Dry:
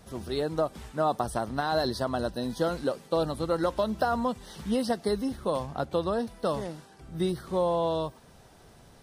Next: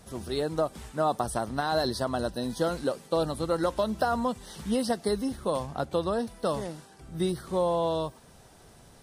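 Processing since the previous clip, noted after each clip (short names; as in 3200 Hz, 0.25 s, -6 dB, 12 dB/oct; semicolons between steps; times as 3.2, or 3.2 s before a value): bell 9000 Hz +5 dB 1.1 oct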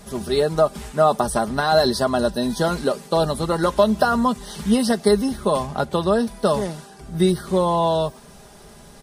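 comb 4.9 ms, depth 55%; gain +8 dB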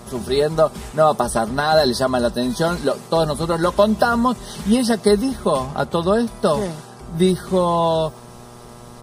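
buzz 120 Hz, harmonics 11, -44 dBFS -3 dB/oct; gain +1.5 dB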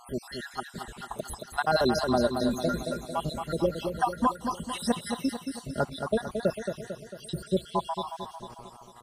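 random spectral dropouts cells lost 72%; on a send: feedback echo 0.224 s, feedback 55%, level -6.5 dB; on the sum: gain -5.5 dB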